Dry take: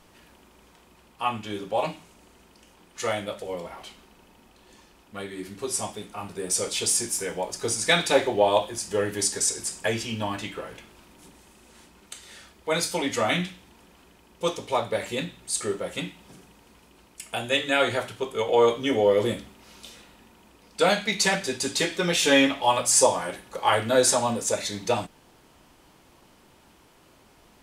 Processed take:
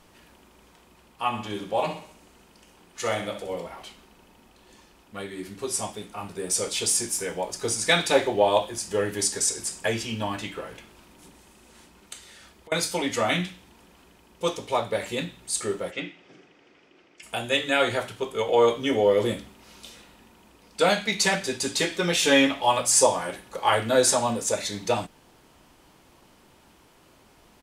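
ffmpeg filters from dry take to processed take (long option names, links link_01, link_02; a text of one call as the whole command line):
ffmpeg -i in.wav -filter_complex "[0:a]asplit=3[link_01][link_02][link_03];[link_01]afade=type=out:start_time=1.32:duration=0.02[link_04];[link_02]aecho=1:1:64|128|192|256|320:0.335|0.154|0.0709|0.0326|0.015,afade=type=in:start_time=1.32:duration=0.02,afade=type=out:start_time=3.63:duration=0.02[link_05];[link_03]afade=type=in:start_time=3.63:duration=0.02[link_06];[link_04][link_05][link_06]amix=inputs=3:normalize=0,asettb=1/sr,asplit=3[link_07][link_08][link_09];[link_07]atrim=end=12.204[link_10];[link_08]atrim=start=12.2:end=12.72,asetpts=PTS-STARTPTS,afade=type=in:duration=0.004:curve=qsin,afade=type=out:start_time=0.516:duration=0.004:curve=qsin,acompressor=threshold=-44dB:ratio=16:attack=3.2:release=140:knee=1:detection=peak[link_11];[link_09]atrim=start=12.716[link_12];[link_10][link_11]acrossfade=duration=0.004:curve1=hsin:curve2=qsin[link_13];[link_13][link_12]acrossfade=duration=0.004:curve1=qsin:curve2=hsin,asplit=3[link_14][link_15][link_16];[link_14]afade=type=out:start_time=15.9:duration=0.02[link_17];[link_15]highpass=200,equalizer=frequency=210:width_type=q:width=4:gain=-9,equalizer=frequency=330:width_type=q:width=4:gain=4,equalizer=frequency=960:width_type=q:width=4:gain=-9,equalizer=frequency=2100:width_type=q:width=4:gain=4,equalizer=frequency=4100:width_type=q:width=4:gain=-8,lowpass=frequency=5100:width=0.5412,lowpass=frequency=5100:width=1.3066,afade=type=in:start_time=15.9:duration=0.02,afade=type=out:start_time=17.22:duration=0.02[link_18];[link_16]afade=type=in:start_time=17.22:duration=0.02[link_19];[link_17][link_18][link_19]amix=inputs=3:normalize=0" out.wav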